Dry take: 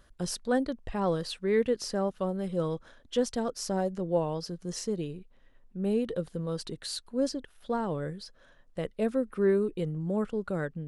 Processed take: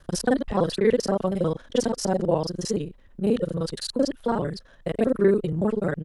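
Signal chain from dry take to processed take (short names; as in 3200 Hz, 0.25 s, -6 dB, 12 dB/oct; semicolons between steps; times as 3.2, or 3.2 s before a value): local time reversal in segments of 54 ms; tempo 1.8×; gain +7 dB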